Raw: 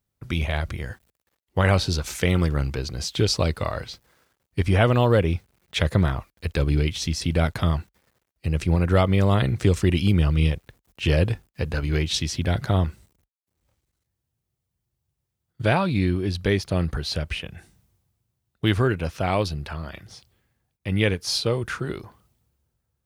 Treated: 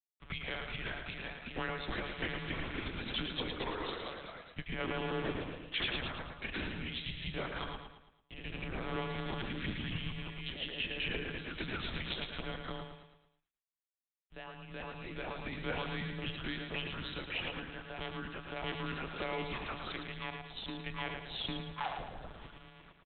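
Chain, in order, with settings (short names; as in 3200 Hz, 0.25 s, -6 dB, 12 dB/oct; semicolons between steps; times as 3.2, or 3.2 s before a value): tape stop at the end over 1.89 s; bit-crush 8-bit; compressor 6:1, threshold -30 dBFS, peak gain reduction 15 dB; echoes that change speed 0.401 s, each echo +1 st, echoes 3; de-esser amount 80%; monotone LPC vocoder at 8 kHz 140 Hz; HPF 44 Hz; tilt +2.5 dB/oct; feedback echo 0.111 s, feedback 44%, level -6.5 dB; frequency shift -120 Hz; gain -3.5 dB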